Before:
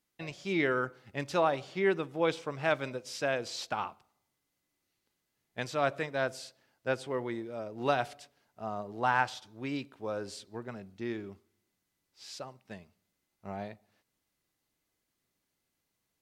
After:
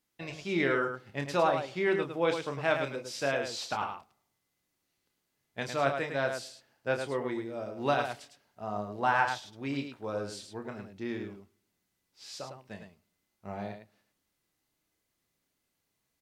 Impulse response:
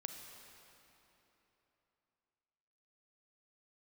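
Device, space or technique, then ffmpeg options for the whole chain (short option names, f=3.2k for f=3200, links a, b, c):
slapback doubling: -filter_complex "[0:a]asplit=3[a][b][c];[b]adelay=29,volume=-7dB[d];[c]adelay=106,volume=-6.5dB[e];[a][d][e]amix=inputs=3:normalize=0"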